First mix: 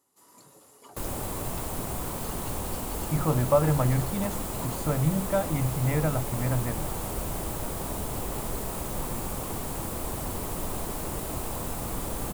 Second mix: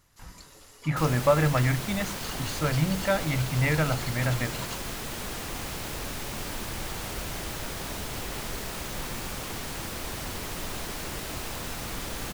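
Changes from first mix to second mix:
speech: entry −2.25 s
second sound −3.5 dB
master: add flat-topped bell 3,000 Hz +10.5 dB 2.4 octaves

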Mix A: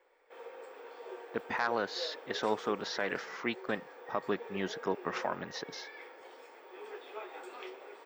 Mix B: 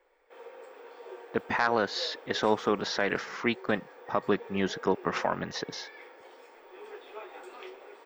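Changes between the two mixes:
speech +5.5 dB
master: add low-shelf EQ 150 Hz +7 dB

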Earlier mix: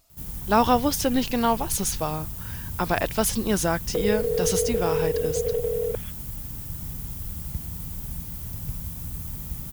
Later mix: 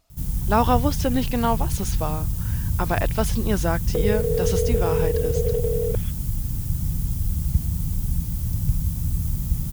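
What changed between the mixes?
background: add bass and treble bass +12 dB, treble +12 dB
master: add high-shelf EQ 6,000 Hz −11.5 dB

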